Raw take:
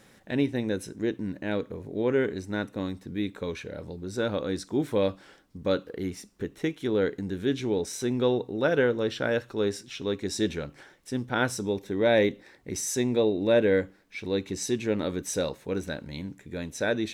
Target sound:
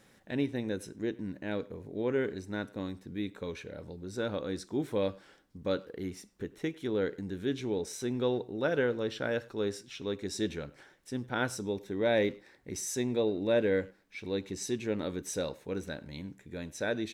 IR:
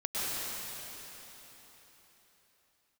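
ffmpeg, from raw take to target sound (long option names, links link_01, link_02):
-filter_complex "[0:a]asplit=2[link_01][link_02];[link_02]adelay=100,highpass=300,lowpass=3400,asoftclip=type=hard:threshold=-20dB,volume=-21dB[link_03];[link_01][link_03]amix=inputs=2:normalize=0,volume=-5.5dB"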